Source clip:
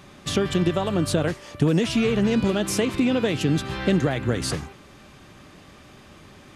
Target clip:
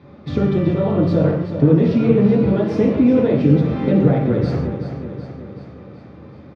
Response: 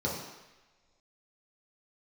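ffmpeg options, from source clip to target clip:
-filter_complex "[0:a]lowpass=2.3k,aecho=1:1:377|754|1131|1508|1885|2262|2639:0.316|0.183|0.106|0.0617|0.0358|0.0208|0.012[a];[1:a]atrim=start_sample=2205,afade=t=out:st=0.22:d=0.01,atrim=end_sample=10143[b];[a][b]afir=irnorm=-1:irlink=0,volume=-6.5dB"

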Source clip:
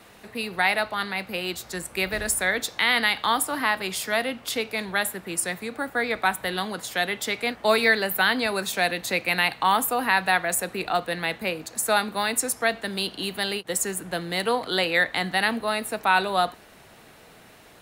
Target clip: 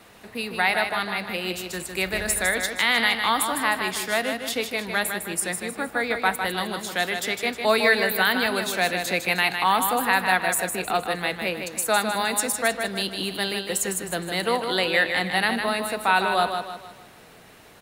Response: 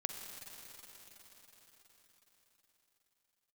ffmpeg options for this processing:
-af "aecho=1:1:155|310|465|620|775:0.473|0.194|0.0795|0.0326|0.0134"

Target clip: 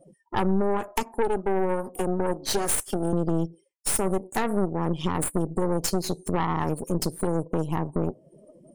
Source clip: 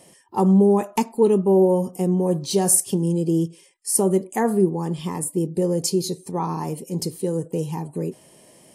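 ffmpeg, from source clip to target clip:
-filter_complex "[0:a]asettb=1/sr,asplit=3[a][b][c];[a]atrim=end=0.884[d];[b]atrim=start=0.88:end=3.13,asetpts=PTS-STARTPTS,afade=t=in:d=0.004:c=qsin,afade=t=out:st=2.246:d=0.004:c=qsin,highpass=f=240:w=0.5412,highpass=f=240:w=1.3066[e];[c]atrim=start=3.126[f];[d][e]acrossfade=d=0.004:c1=hsin:c2=qsin[g];[g][f]acrossfade=d=0.004:c1=qsin:c2=hsin,afftdn=nr=36:nf=-43,adynamicequalizer=threshold=0.00891:dfrequency=1600:dqfactor=1:tfrequency=1600:tqfactor=1:attack=5:release=100:ratio=0.375:range=2.5:mode=boostabove:tftype=bell,acompressor=threshold=-35dB:ratio=4,aeval=exprs='0.112*(cos(1*acos(clip(val(0)/0.112,-1,1)))-cos(1*PI/2))+0.0178*(cos(8*acos(clip(val(0)/0.112,-1,1)))-cos(8*PI/2))':c=same,volume=7.5dB"

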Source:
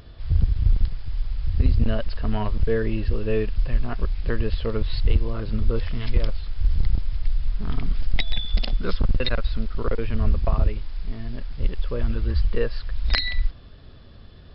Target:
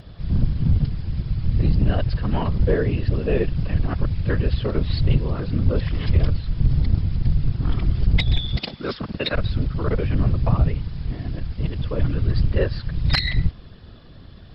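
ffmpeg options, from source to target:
-filter_complex "[0:a]asettb=1/sr,asplit=3[a][b][c];[a]atrim=end=8.564[d];[b]atrim=start=8.56:end=9.34,asetpts=PTS-STARTPTS,afade=t=in:d=0.004:c=qsin,afade=t=out:st=0.776:d=0.004:c=qsin,highpass=f=120:w=0.5412,highpass=f=120:w=1.3066[e];[c]atrim=start=9.336[f];[d][e]acrossfade=d=0.004:c1=hsin:c2=qsin[g];[g][f]acrossfade=d=0.004:c1=qsin:c2=hsin,afftfilt=real='hypot(re,im)*cos(2*PI*random(0))':imag='hypot(re,im)*sin(2*PI*random(1))':win_size=512:overlap=0.75,asoftclip=type=tanh:threshold=-14dB,volume=8.5dB"

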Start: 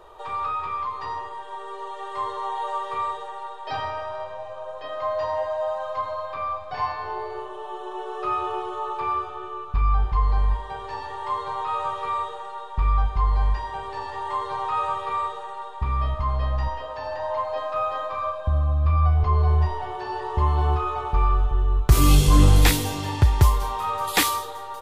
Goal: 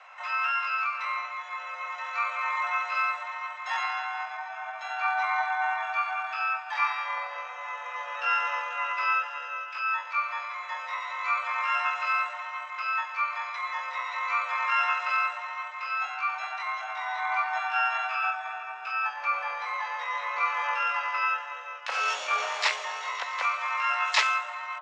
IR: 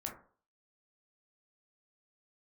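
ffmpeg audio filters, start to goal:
-filter_complex "[0:a]highpass=f=570:t=q:w=0.5412,highpass=f=570:t=q:w=1.307,lowpass=f=2.9k:t=q:w=0.5176,lowpass=f=2.9k:t=q:w=0.7071,lowpass=f=2.9k:t=q:w=1.932,afreqshift=130,asplit=3[a][b][c];[b]asetrate=52444,aresample=44100,atempo=0.840896,volume=-9dB[d];[c]asetrate=88200,aresample=44100,atempo=0.5,volume=-3dB[e];[a][d][e]amix=inputs=3:normalize=0,volume=-2dB"

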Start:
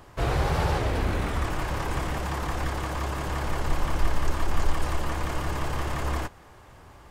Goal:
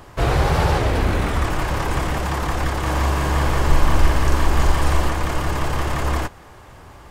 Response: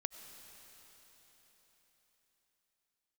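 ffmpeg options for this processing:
-filter_complex "[0:a]asettb=1/sr,asplit=3[a][b][c];[a]atrim=end=2.824[d];[b]atrim=start=2.82:end=5.09,asetpts=PTS-STARTPTS,afade=t=in:d=0.004:c=qsin,afade=t=out:st=2.266:d=0.004:c=qsin,asplit=2[e][f];[f]adelay=42,volume=-2dB[g];[e][g]amix=inputs=2:normalize=0,atrim=end_sample=100107[h];[c]atrim=start=5.086[i];[d][h]acrossfade=d=0.004:c1=hsin:c2=qsin[j];[j][i]acrossfade=d=0.004:c1=qsin:c2=hsin,volume=7dB"

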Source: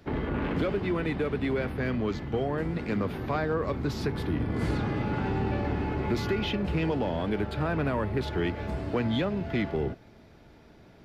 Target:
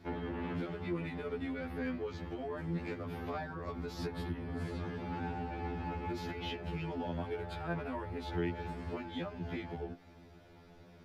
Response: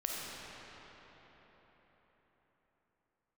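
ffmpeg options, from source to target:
-af "acompressor=threshold=-32dB:ratio=6,afftfilt=real='re*2*eq(mod(b,4),0)':imag='im*2*eq(mod(b,4),0)':win_size=2048:overlap=0.75,volume=-1dB"

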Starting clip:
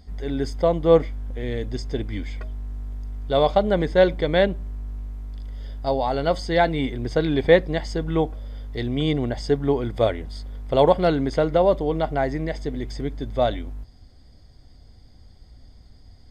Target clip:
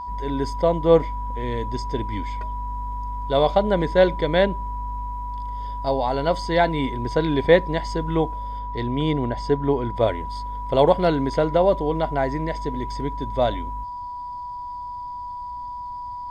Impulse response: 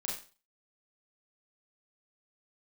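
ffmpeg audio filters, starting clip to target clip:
-filter_complex "[0:a]aeval=exprs='val(0)+0.0316*sin(2*PI*980*n/s)':c=same,asettb=1/sr,asplit=3[a][b][c];[a]atrim=end=8.594[d];[b]atrim=start=8.59:end=10.08,asetpts=PTS-STARTPTS,afade=t=in:d=0.004:c=qsin,afade=t=out:st=1.486:d=0.004:c=qsin,highshelf=f=4.4k:g=-7.5[e];[c]atrim=start=10.076[f];[d][e]acrossfade=d=0.004:c1=hsin:c2=qsin[g];[g][f]acrossfade=d=0.004:c1=qsin:c2=hsin"

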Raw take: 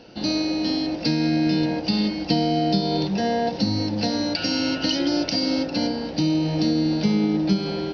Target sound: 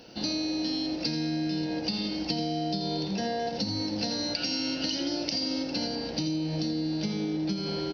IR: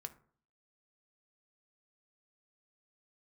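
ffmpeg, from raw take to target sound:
-af "aemphasis=mode=production:type=50fm,aecho=1:1:83:0.398,acompressor=threshold=-23dB:ratio=6,volume=-4dB"

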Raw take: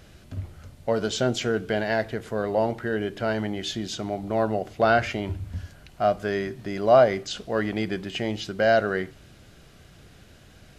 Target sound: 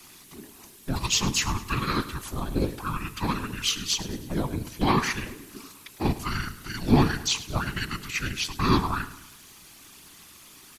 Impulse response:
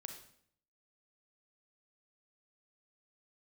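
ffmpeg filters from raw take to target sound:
-filter_complex "[0:a]aeval=exprs='val(0)*sin(2*PI*62*n/s)':c=same,aemphasis=mode=production:type=riaa,afftfilt=real='hypot(re,im)*cos(2*PI*random(0))':imag='hypot(re,im)*sin(2*PI*random(1))':win_size=512:overlap=0.75,asplit=2[a][b];[b]aeval=exprs='clip(val(0),-1,0.0237)':c=same,volume=-8dB[c];[a][c]amix=inputs=2:normalize=0,afreqshift=-450,asplit=2[d][e];[e]aecho=0:1:105|210|315|420:0.158|0.0761|0.0365|0.0175[f];[d][f]amix=inputs=2:normalize=0,volume=6dB"

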